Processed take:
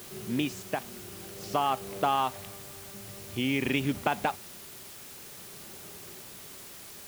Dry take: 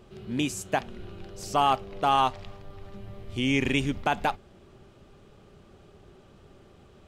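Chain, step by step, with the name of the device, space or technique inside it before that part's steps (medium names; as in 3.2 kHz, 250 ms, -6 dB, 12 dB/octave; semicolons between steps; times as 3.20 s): medium wave at night (band-pass 110–4500 Hz; compression, threshold -25 dBFS, peak gain reduction 7 dB; tremolo 0.51 Hz, depth 45%; whistle 10 kHz -62 dBFS; white noise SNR 13 dB); trim +2.5 dB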